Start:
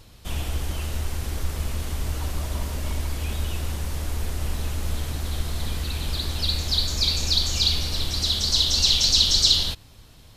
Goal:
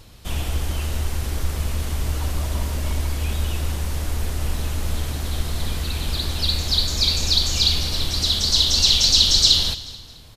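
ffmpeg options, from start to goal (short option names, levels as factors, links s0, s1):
-af "aecho=1:1:217|434|651:0.158|0.0586|0.0217,volume=1.41"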